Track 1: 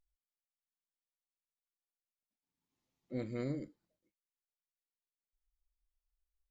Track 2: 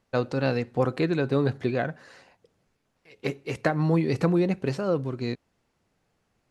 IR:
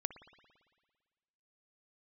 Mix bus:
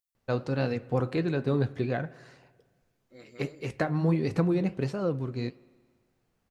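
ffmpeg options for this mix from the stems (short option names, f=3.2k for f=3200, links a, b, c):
-filter_complex "[0:a]highpass=f=910:p=1,highshelf=f=5.4k:g=11.5,volume=0dB[a];[1:a]adelay=150,volume=-3.5dB,asplit=2[b][c];[c]volume=-6.5dB[d];[2:a]atrim=start_sample=2205[e];[d][e]afir=irnorm=-1:irlink=0[f];[a][b][f]amix=inputs=3:normalize=0,flanger=delay=3.7:depth=7.3:regen=-72:speed=1.4:shape=triangular,lowshelf=f=170:g=6"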